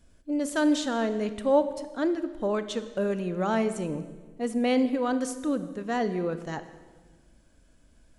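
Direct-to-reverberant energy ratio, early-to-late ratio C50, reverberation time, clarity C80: 11.0 dB, 12.5 dB, 1.4 s, 13.5 dB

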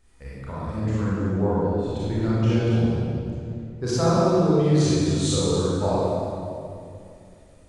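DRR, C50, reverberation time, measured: −10.0 dB, −6.5 dB, 2.5 s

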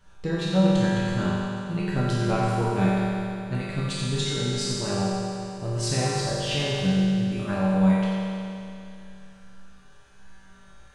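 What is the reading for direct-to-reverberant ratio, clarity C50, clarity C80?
−9.5 dB, −4.0 dB, −2.0 dB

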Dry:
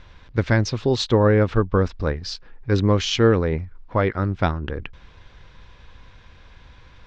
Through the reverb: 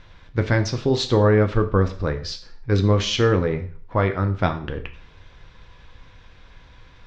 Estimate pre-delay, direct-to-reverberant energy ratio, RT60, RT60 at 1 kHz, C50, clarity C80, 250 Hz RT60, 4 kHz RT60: 4 ms, 6.0 dB, 0.45 s, 0.45 s, 13.0 dB, 16.5 dB, 0.50 s, 0.45 s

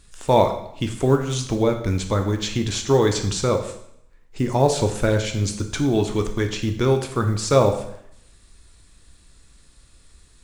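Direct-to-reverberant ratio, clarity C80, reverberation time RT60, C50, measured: 5.0 dB, 12.0 dB, 0.75 s, 9.0 dB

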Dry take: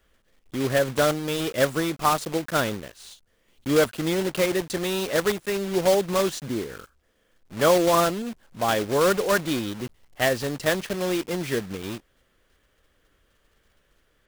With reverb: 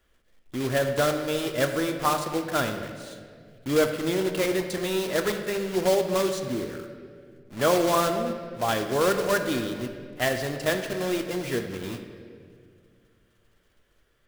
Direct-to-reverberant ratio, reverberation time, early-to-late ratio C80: 5.5 dB, 2.1 s, 8.5 dB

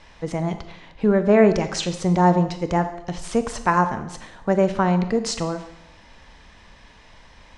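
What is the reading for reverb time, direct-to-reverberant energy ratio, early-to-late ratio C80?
0.80 s, 9.0 dB, 13.5 dB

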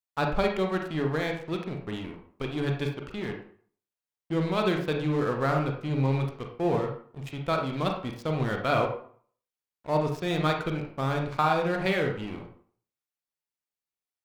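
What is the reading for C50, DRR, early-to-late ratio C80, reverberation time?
5.5 dB, 2.0 dB, 9.5 dB, 0.50 s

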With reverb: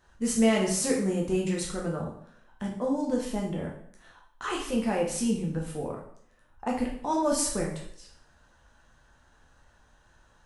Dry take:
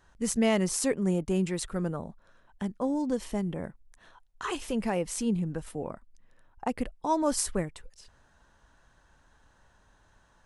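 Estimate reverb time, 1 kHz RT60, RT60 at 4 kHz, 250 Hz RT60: 0.65 s, 0.65 s, 0.60 s, 0.70 s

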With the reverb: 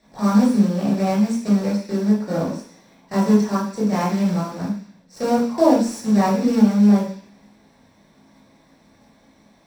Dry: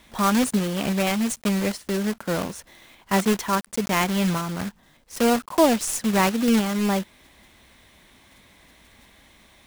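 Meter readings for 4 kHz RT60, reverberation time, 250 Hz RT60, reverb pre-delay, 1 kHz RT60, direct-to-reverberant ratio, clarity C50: 0.85 s, 0.50 s, 0.50 s, 15 ms, 0.50 s, −7.0 dB, 3.5 dB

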